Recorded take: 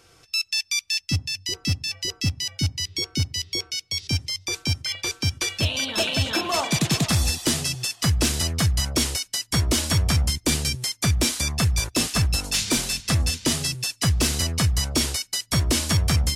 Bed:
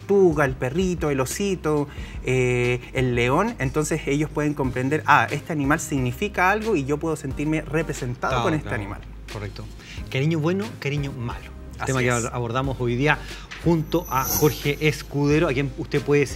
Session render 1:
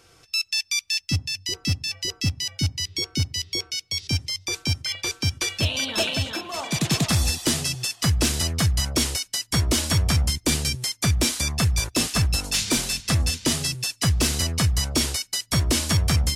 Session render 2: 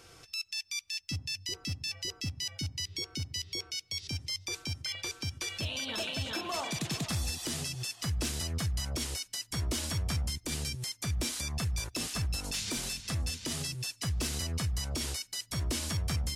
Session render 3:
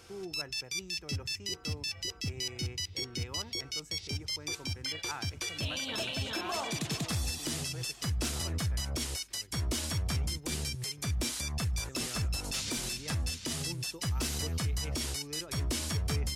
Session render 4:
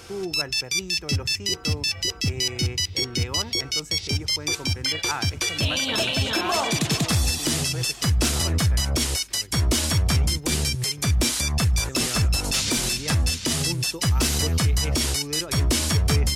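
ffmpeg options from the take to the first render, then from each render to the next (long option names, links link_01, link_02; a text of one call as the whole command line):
ffmpeg -i in.wav -filter_complex "[0:a]asplit=3[link_01][link_02][link_03];[link_01]atrim=end=6.44,asetpts=PTS-STARTPTS,afade=type=out:start_time=6.05:duration=0.39:silence=0.375837[link_04];[link_02]atrim=start=6.44:end=6.53,asetpts=PTS-STARTPTS,volume=-8.5dB[link_05];[link_03]atrim=start=6.53,asetpts=PTS-STARTPTS,afade=type=in:duration=0.39:silence=0.375837[link_06];[link_04][link_05][link_06]concat=n=3:v=0:a=1" out.wav
ffmpeg -i in.wav -af "acompressor=threshold=-28dB:ratio=6,alimiter=level_in=2dB:limit=-24dB:level=0:latency=1:release=108,volume=-2dB" out.wav
ffmpeg -i in.wav -i bed.wav -filter_complex "[1:a]volume=-26dB[link_01];[0:a][link_01]amix=inputs=2:normalize=0" out.wav
ffmpeg -i in.wav -af "volume=11.5dB" out.wav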